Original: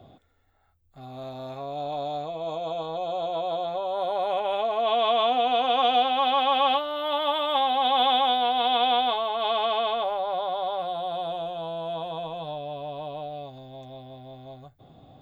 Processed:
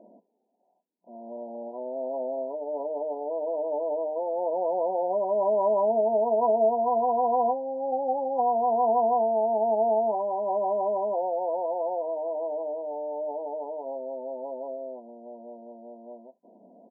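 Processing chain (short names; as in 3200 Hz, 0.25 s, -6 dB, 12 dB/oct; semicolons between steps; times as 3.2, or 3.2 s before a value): FFT band-pass 200–1100 Hz; varispeed -10%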